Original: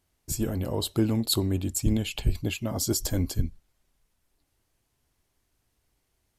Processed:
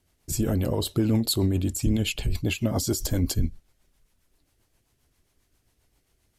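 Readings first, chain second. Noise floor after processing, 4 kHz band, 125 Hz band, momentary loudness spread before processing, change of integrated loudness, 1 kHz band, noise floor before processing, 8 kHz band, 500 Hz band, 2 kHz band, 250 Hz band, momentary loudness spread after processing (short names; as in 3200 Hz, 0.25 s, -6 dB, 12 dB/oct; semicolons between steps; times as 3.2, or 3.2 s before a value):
-71 dBFS, +1.0 dB, +3.0 dB, 6 LU, +2.0 dB, +1.5 dB, -75 dBFS, 0.0 dB, +2.5 dB, +4.0 dB, +2.5 dB, 5 LU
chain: limiter -21 dBFS, peak gain reduction 9.5 dB; rotary speaker horn 7.5 Hz; gain +7 dB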